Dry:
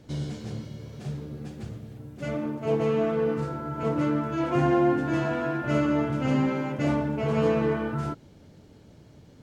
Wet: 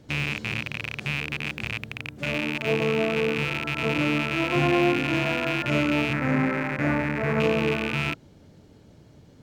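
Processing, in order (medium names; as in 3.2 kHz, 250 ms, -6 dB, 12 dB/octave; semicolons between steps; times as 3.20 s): rattle on loud lows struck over -37 dBFS, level -16 dBFS; 6.13–7.40 s: resonant high shelf 2.3 kHz -8 dB, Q 3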